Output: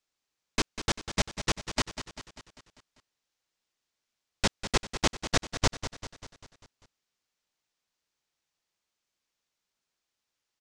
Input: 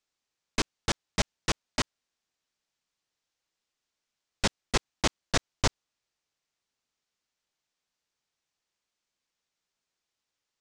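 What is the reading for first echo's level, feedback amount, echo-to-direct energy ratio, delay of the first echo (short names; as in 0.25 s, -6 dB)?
-11.0 dB, 55%, -9.5 dB, 0.197 s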